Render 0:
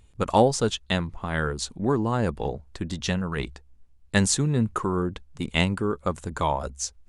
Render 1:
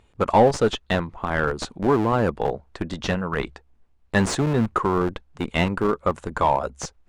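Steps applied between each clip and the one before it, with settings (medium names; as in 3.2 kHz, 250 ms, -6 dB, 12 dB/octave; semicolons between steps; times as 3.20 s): in parallel at -3.5 dB: Schmitt trigger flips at -21.5 dBFS; on the sum: overdrive pedal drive 16 dB, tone 1.1 kHz, clips at -4.5 dBFS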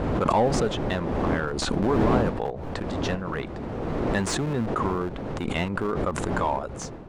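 wind noise 450 Hz -26 dBFS; swell ahead of each attack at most 21 dB/s; trim -6.5 dB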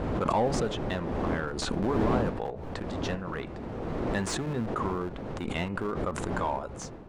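de-hum 143.2 Hz, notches 20; trim -4.5 dB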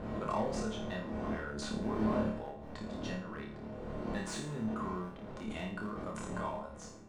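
feedback comb 210 Hz, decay 0.2 s, harmonics odd, mix 80%; on a send: flutter echo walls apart 4.7 m, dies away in 0.47 s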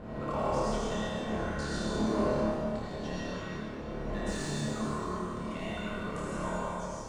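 reverberation RT60 2.5 s, pre-delay 68 ms, DRR -7 dB; trim -2.5 dB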